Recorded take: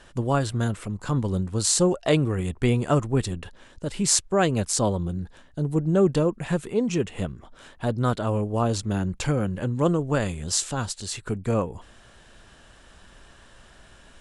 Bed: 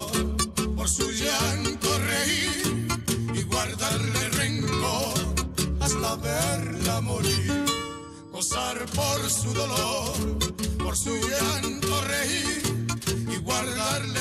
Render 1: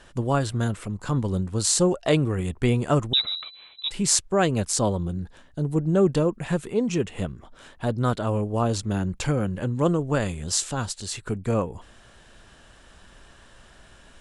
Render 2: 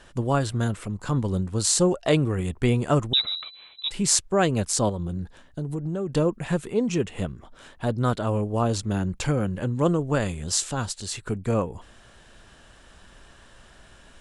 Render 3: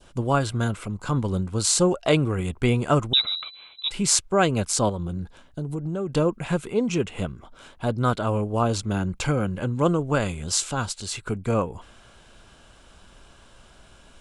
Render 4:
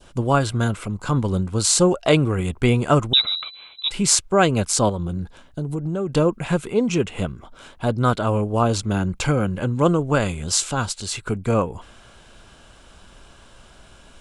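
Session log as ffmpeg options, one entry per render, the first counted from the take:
-filter_complex "[0:a]asettb=1/sr,asplit=3[a][b][c];[a]atrim=end=3.134[d];[b]atrim=start=3.13:end=3.91,asetpts=PTS-STARTPTS,afade=t=in:d=0.004:c=qsin,afade=t=out:st=0.776:d=0.004:c=qsin,lowpass=f=3.4k:t=q:w=0.5098,lowpass=f=3.4k:t=q:w=0.6013,lowpass=f=3.4k:t=q:w=0.9,lowpass=f=3.4k:t=q:w=2.563,afreqshift=-4000[e];[c]atrim=start=3.906[f];[d][e]acrossfade=d=0.004:c1=hsin:c2=qsin[g];[g][f]acrossfade=d=0.004:c1=qsin:c2=hsin"
-filter_complex "[0:a]asettb=1/sr,asplit=3[a][b][c];[a]atrim=end=4.894[d];[b]atrim=start=4.89:end=6.13,asetpts=PTS-STARTPTS,afade=t=in:d=0.004:c=qsin,afade=t=out:st=1.236:d=0.004:c=qsin,acompressor=threshold=-25dB:ratio=6:attack=3.2:release=140:knee=1:detection=peak[e];[c]atrim=start=6.126[f];[d][e]acrossfade=d=0.004:c1=hsin:c2=qsin[g];[g][f]acrossfade=d=0.004:c1=qsin:c2=hsin"
-af "bandreject=f=1.8k:w=5.7,adynamicequalizer=threshold=0.00794:dfrequency=1700:dqfactor=0.73:tfrequency=1700:tqfactor=0.73:attack=5:release=100:ratio=0.375:range=2.5:mode=boostabove:tftype=bell"
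-af "volume=3.5dB,alimiter=limit=-1dB:level=0:latency=1"

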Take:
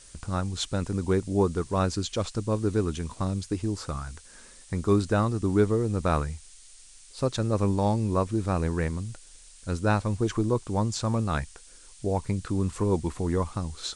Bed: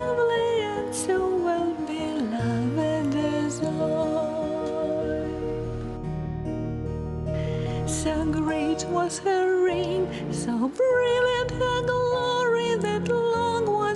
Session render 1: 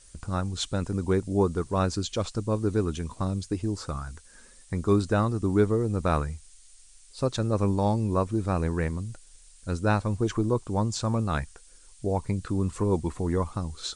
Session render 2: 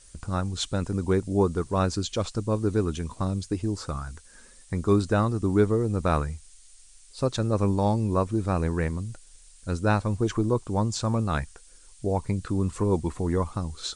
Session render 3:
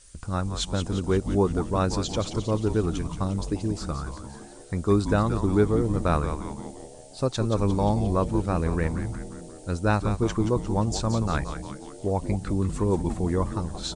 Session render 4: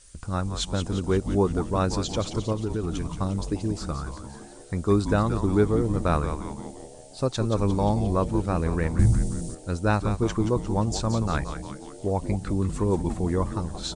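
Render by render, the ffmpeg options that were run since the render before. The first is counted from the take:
-af "afftdn=nr=6:nf=-51"
-af "volume=1dB"
-filter_complex "[0:a]asplit=8[a][b][c][d][e][f][g][h];[b]adelay=176,afreqshift=-140,volume=-8.5dB[i];[c]adelay=352,afreqshift=-280,volume=-13.1dB[j];[d]adelay=528,afreqshift=-420,volume=-17.7dB[k];[e]adelay=704,afreqshift=-560,volume=-22.2dB[l];[f]adelay=880,afreqshift=-700,volume=-26.8dB[m];[g]adelay=1056,afreqshift=-840,volume=-31.4dB[n];[h]adelay=1232,afreqshift=-980,volume=-36dB[o];[a][i][j][k][l][m][n][o]amix=inputs=8:normalize=0"
-filter_complex "[0:a]asettb=1/sr,asplit=3[a][b][c];[a]atrim=end=2.524[d];[b]atrim=start=2.52:end=3.07,asetpts=PTS-STARTPTS,afade=t=in:d=0.004:c=qsin,afade=t=out:st=0.546:d=0.004:c=qsin,acompressor=threshold=-23dB:ratio=5:attack=3.2:release=140:knee=1:detection=peak[e];[c]atrim=start=3.066[f];[d][e]acrossfade=d=0.004:c1=hsin:c2=qsin[g];[g][f]acrossfade=d=0.004:c1=qsin:c2=hsin,asettb=1/sr,asplit=3[h][i][j];[h]atrim=end=8.994[k];[i]atrim=start=8.99:end=9.55,asetpts=PTS-STARTPTS,afade=t=in:d=0.004:c=qsin,afade=t=out:st=0.556:d=0.004:c=qsin,bass=f=250:g=14,treble=f=4k:g=11[l];[j]atrim=start=9.546[m];[k][l]acrossfade=d=0.004:c1=hsin:c2=qsin[n];[n][m]acrossfade=d=0.004:c1=qsin:c2=hsin"

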